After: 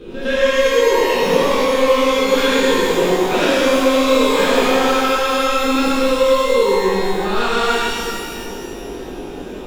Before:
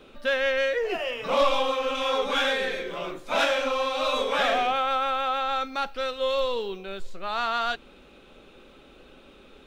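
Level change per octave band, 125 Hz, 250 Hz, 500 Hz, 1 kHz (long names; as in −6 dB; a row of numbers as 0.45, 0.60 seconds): can't be measured, +20.0 dB, +12.5 dB, +7.5 dB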